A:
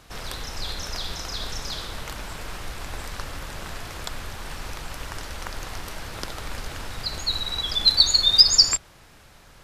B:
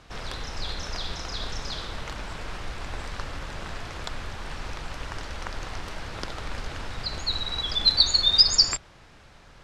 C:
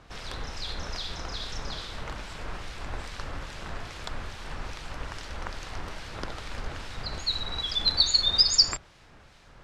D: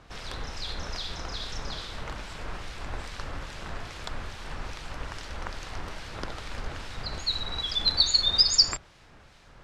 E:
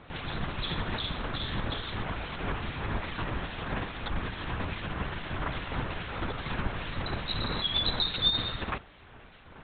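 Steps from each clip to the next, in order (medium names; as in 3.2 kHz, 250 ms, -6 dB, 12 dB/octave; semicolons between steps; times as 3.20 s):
distance through air 75 m
harmonic tremolo 2.4 Hz, depth 50%, crossover 2 kHz
no audible change
LPC vocoder at 8 kHz whisper; trim +2 dB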